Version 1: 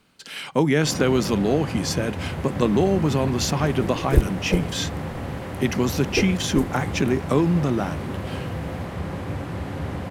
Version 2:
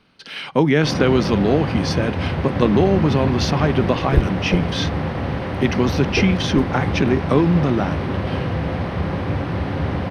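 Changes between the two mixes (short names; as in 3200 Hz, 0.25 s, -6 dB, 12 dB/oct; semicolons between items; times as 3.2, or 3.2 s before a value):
speech +3.5 dB; first sound +7.0 dB; master: add polynomial smoothing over 15 samples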